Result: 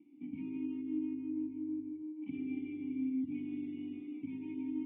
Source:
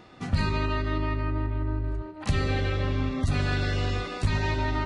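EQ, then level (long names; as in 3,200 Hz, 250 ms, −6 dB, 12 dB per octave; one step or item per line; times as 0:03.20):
formant resonators in series i
formant filter u
high-pass filter 100 Hz
+5.5 dB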